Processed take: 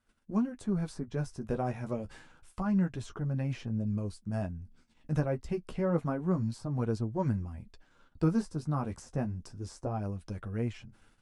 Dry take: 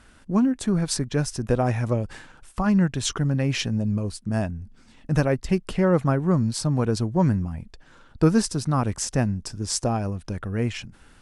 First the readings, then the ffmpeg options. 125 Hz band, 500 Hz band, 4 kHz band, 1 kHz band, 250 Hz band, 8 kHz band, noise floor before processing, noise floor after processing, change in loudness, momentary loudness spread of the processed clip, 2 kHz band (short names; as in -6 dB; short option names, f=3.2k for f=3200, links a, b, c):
-9.0 dB, -9.5 dB, -20.5 dB, -10.0 dB, -9.0 dB, -22.5 dB, -53 dBFS, -66 dBFS, -9.5 dB, 9 LU, -13.5 dB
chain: -filter_complex "[0:a]bandreject=f=1.8k:w=21,agate=range=-16dB:threshold=-50dB:ratio=16:detection=peak,flanger=delay=8.6:depth=4.7:regen=-25:speed=0.28:shape=sinusoidal,acrossover=split=1500[a][b];[b]acompressor=threshold=-46dB:ratio=6[c];[a][c]amix=inputs=2:normalize=0,volume=-6dB"